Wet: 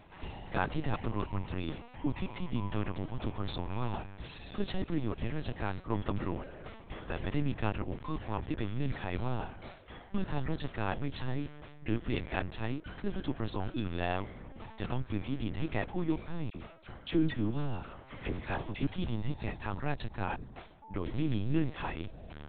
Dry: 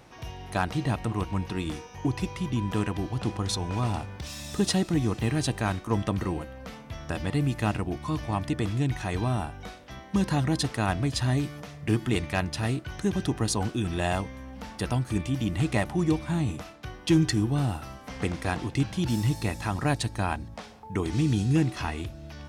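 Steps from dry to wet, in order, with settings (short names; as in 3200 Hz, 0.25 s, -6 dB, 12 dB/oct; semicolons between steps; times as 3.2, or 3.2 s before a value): vocal rider within 5 dB 2 s; LPC vocoder at 8 kHz pitch kept; 16.5–18.87 dispersion lows, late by 46 ms, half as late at 1500 Hz; gain -7 dB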